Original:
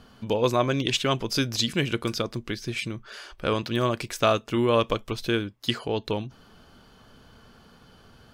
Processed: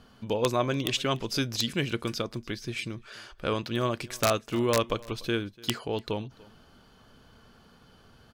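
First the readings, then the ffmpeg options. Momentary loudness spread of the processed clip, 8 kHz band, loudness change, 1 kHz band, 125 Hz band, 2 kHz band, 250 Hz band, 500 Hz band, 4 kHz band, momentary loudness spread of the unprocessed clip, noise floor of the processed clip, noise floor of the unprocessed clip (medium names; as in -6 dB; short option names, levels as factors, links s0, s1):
9 LU, -0.5 dB, -3.5 dB, -4.0 dB, -3.5 dB, -3.0 dB, -3.5 dB, -3.5 dB, -3.5 dB, 9 LU, -58 dBFS, -55 dBFS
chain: -af "aeval=exprs='(mod(2.99*val(0)+1,2)-1)/2.99':c=same,aecho=1:1:292:0.0708,volume=0.668"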